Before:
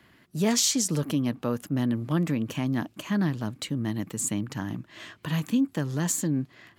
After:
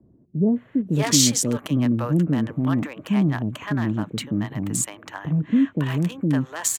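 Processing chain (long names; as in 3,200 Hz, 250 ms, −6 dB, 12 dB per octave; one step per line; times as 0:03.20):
adaptive Wiener filter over 9 samples
multiband delay without the direct sound lows, highs 560 ms, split 530 Hz
level +6 dB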